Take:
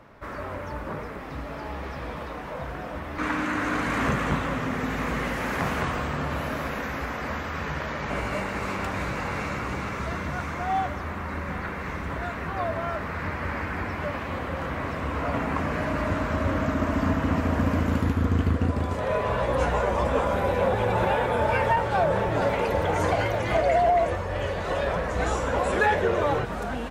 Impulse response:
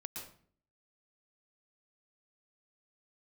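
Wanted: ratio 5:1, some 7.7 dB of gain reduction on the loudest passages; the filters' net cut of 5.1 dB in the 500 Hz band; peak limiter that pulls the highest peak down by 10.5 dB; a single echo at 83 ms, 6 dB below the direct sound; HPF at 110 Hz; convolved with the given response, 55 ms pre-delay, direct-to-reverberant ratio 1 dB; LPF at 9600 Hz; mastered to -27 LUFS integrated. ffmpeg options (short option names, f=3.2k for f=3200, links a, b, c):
-filter_complex "[0:a]highpass=110,lowpass=9.6k,equalizer=f=500:t=o:g=-6.5,acompressor=threshold=-30dB:ratio=5,alimiter=level_in=5.5dB:limit=-24dB:level=0:latency=1,volume=-5.5dB,aecho=1:1:83:0.501,asplit=2[a][b];[1:a]atrim=start_sample=2205,adelay=55[c];[b][c]afir=irnorm=-1:irlink=0,volume=1.5dB[d];[a][d]amix=inputs=2:normalize=0,volume=7dB"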